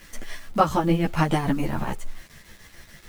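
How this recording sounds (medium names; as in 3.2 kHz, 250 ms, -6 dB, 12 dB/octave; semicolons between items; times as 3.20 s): tremolo triangle 6.9 Hz, depth 70%; a quantiser's noise floor 8-bit, dither none; a shimmering, thickened sound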